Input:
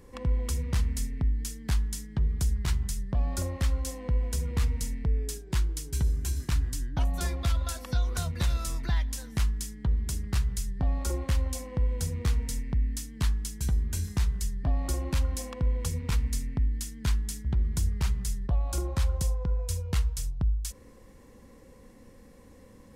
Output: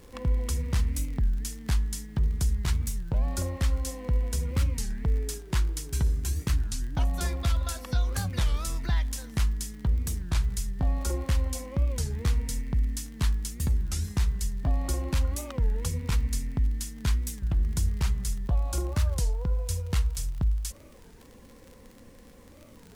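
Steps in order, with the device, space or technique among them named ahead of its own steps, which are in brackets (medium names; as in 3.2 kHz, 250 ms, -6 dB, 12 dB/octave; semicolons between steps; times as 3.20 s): warped LP (warped record 33 1/3 rpm, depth 250 cents; crackle 47 per s -39 dBFS; pink noise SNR 36 dB); 4.90–6.14 s: peaking EQ 1.1 kHz +3 dB 2.4 oct; trim +1 dB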